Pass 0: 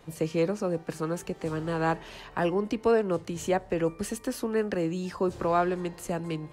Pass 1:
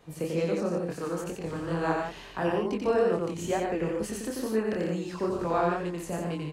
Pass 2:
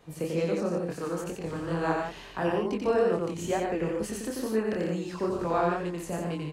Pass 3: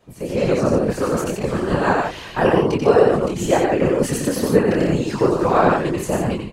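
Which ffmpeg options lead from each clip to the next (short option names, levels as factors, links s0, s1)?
-filter_complex "[0:a]asplit=2[s0][s1];[s1]aecho=0:1:90.38|148.7:0.708|0.501[s2];[s0][s2]amix=inputs=2:normalize=0,flanger=delay=22.5:depth=6.8:speed=2.2"
-af anull
-af "dynaudnorm=f=150:g=5:m=4.22,afftfilt=real='hypot(re,im)*cos(2*PI*random(0))':imag='hypot(re,im)*sin(2*PI*random(1))':win_size=512:overlap=0.75,volume=2"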